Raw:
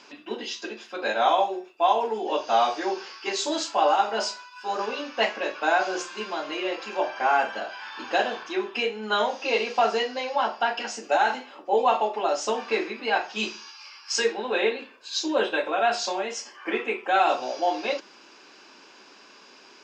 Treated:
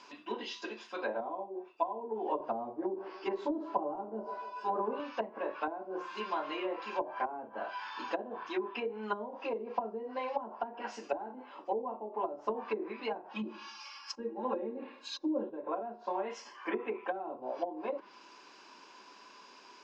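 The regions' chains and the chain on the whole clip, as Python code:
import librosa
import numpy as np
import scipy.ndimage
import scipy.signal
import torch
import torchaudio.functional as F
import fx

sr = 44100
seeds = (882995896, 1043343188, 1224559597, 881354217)

y = fx.chain(x, sr, fx.tilt_eq(slope=-2.5),
    fx.echo_banded(ms=145, feedback_pct=55, hz=430.0, wet_db=-15), at=(2.4, 5.0))
y = fx.chain(y, sr, fx.comb(ms=3.6, depth=0.98),
    fx.echo_feedback(ms=104, feedback_pct=35, wet_db=-17), at=(13.31, 15.5))
y = fx.env_lowpass_down(y, sr, base_hz=320.0, full_db=-20.5)
y = fx.peak_eq(y, sr, hz=1000.0, db=11.5, octaves=0.2)
y = y * 10.0 ** (-6.5 / 20.0)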